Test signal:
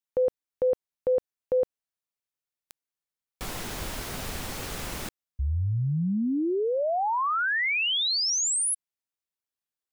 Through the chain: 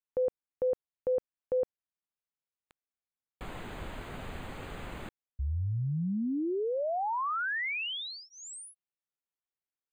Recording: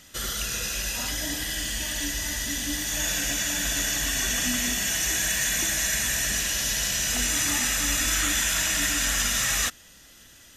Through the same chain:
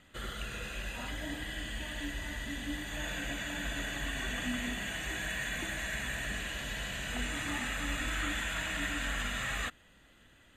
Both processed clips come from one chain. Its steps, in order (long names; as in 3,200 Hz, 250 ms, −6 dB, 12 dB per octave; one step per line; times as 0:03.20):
moving average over 8 samples
level −5 dB